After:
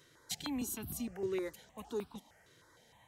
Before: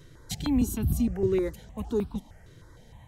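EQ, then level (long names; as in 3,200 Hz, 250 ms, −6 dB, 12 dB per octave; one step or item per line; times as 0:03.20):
high-pass filter 820 Hz 6 dB per octave
−3.0 dB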